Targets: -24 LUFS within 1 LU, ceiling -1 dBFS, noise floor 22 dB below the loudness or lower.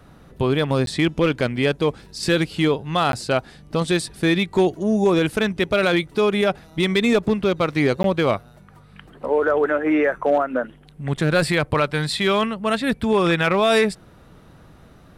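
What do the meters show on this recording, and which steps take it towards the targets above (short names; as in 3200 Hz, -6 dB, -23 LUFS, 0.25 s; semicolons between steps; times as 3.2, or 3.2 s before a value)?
clipped 1.0%; flat tops at -10.0 dBFS; dropouts 3; longest dropout 12 ms; loudness -20.5 LUFS; peak -10.0 dBFS; loudness target -24.0 LUFS
-> clip repair -10 dBFS; interpolate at 0.86/3.12/8.03, 12 ms; gain -3.5 dB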